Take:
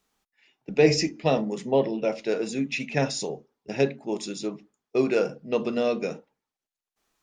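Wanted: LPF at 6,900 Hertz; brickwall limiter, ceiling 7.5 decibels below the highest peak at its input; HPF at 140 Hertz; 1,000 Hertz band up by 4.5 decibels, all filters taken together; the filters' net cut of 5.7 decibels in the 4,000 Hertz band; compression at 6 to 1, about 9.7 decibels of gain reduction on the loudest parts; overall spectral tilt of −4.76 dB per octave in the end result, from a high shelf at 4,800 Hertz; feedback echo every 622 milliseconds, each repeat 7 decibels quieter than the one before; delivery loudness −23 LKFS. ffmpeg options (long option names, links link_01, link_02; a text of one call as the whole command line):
ffmpeg -i in.wav -af "highpass=140,lowpass=6900,equalizer=frequency=1000:width_type=o:gain=7,equalizer=frequency=4000:width_type=o:gain=-5,highshelf=frequency=4800:gain=-3.5,acompressor=threshold=-23dB:ratio=6,alimiter=limit=-19.5dB:level=0:latency=1,aecho=1:1:622|1244|1866|2488|3110:0.447|0.201|0.0905|0.0407|0.0183,volume=8.5dB" out.wav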